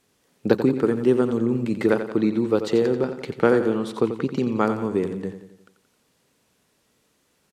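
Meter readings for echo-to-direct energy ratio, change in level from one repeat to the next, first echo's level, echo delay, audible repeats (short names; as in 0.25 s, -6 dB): -8.5 dB, -6.0 dB, -10.0 dB, 88 ms, 5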